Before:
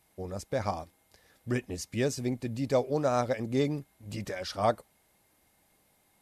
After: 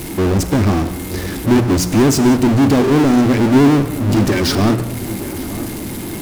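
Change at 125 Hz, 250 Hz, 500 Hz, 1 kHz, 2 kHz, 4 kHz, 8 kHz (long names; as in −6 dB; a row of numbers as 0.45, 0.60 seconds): +19.5, +22.5, +12.5, +12.5, +17.0, +18.5, +19.0 decibels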